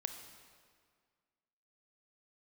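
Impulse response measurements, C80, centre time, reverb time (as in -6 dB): 8.5 dB, 29 ms, 1.9 s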